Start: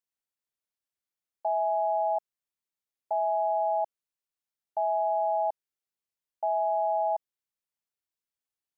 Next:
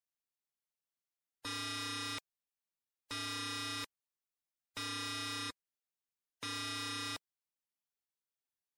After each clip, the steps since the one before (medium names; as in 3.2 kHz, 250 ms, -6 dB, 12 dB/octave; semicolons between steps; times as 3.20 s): integer overflow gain 28 dB; spectral gate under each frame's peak -15 dB strong; trim -5.5 dB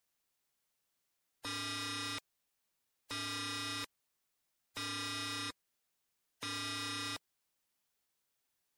peak limiter -45.5 dBFS, peak gain reduction 11.5 dB; trim +11 dB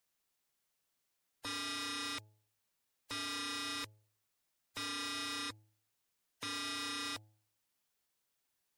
de-hum 106.5 Hz, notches 8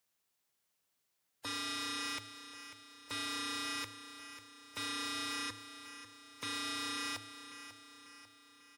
high-pass 55 Hz; feedback delay 544 ms, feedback 53%, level -12 dB; trim +1 dB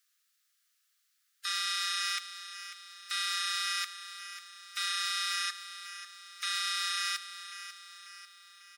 rippled Chebyshev high-pass 1.2 kHz, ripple 3 dB; trim +8.5 dB